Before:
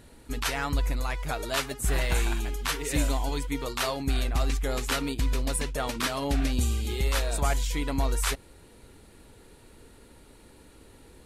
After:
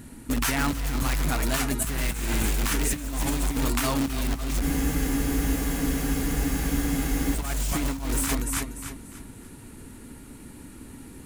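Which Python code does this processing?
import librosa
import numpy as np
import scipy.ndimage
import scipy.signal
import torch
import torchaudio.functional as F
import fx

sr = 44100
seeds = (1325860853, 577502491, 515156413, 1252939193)

p1 = fx.graphic_eq(x, sr, hz=(125, 250, 500, 4000), db=(4, 10, -8, -9))
p2 = fx.echo_feedback(p1, sr, ms=294, feedback_pct=33, wet_db=-7)
p3 = (np.mod(10.0 ** (23.5 / 20.0) * p2 + 1.0, 2.0) - 1.0) / 10.0 ** (23.5 / 20.0)
p4 = p2 + (p3 * librosa.db_to_amplitude(-8.5))
p5 = fx.high_shelf(p4, sr, hz=2400.0, db=6.0)
p6 = fx.over_compress(p5, sr, threshold_db=-25.0, ratio=-0.5)
y = fx.spec_freeze(p6, sr, seeds[0], at_s=4.64, hold_s=2.71)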